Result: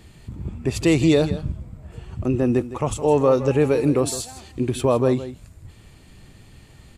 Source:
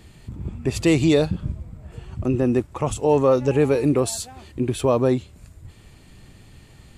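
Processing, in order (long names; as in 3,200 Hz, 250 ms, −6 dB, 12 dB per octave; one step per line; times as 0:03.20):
0:04.23–0:04.71: parametric band 5,900 Hz +5.5 dB 1.5 octaves
single-tap delay 161 ms −14 dB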